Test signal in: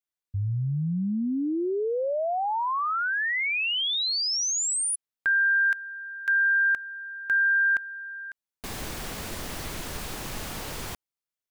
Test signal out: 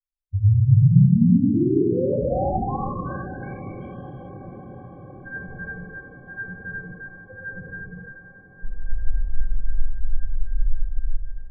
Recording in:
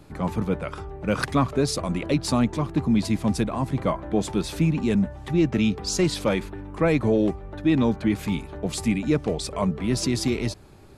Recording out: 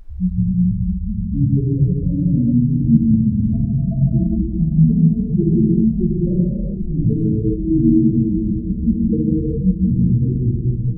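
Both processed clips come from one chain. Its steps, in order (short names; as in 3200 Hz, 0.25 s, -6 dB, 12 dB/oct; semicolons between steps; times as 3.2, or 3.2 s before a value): Wiener smoothing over 15 samples; reverb removal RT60 0.76 s; LPF 1100 Hz 12 dB/oct; tilt -4.5 dB/oct; notches 50/100/150/200/250/300 Hz; in parallel at -2.5 dB: compressor, threshold -26 dBFS; on the sum: decimation with a swept rate 35×, swing 160% 2.8 Hz; loudest bins only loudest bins 2; on a send: diffused feedback echo 0.771 s, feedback 66%, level -14.5 dB; on the sum: non-linear reverb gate 0.45 s flat, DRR -6.5 dB; gain -5.5 dB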